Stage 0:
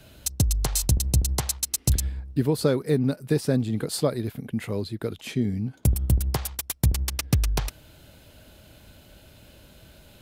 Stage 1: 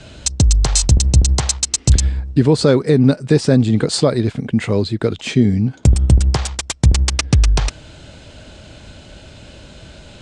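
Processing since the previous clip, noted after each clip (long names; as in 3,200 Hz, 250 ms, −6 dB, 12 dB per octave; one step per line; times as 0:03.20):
Butterworth low-pass 8,400 Hz 48 dB per octave
boost into a limiter +13 dB
level −1 dB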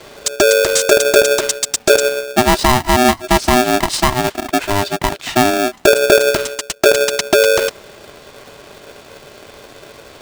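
ring modulator with a square carrier 500 Hz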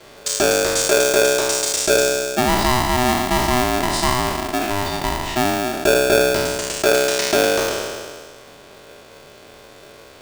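peak hold with a decay on every bin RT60 1.87 s
level −8 dB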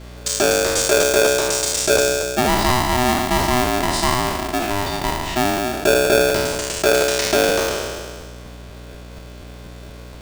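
mains hum 60 Hz, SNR 18 dB
regular buffer underruns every 0.24 s, samples 512, repeat, from 0:00.76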